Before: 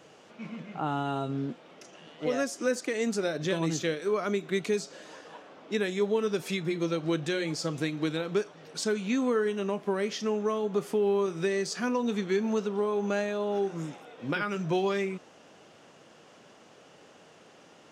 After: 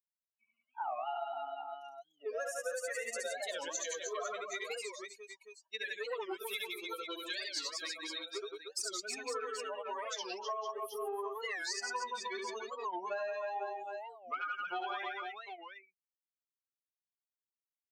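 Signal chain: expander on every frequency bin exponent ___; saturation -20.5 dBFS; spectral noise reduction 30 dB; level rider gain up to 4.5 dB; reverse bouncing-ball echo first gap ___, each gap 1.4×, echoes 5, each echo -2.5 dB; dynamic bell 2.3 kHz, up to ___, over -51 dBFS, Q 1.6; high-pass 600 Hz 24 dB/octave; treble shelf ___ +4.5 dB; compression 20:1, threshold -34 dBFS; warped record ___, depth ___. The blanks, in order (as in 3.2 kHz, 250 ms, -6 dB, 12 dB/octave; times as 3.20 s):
3, 70 ms, -3 dB, 8.8 kHz, 45 rpm, 250 cents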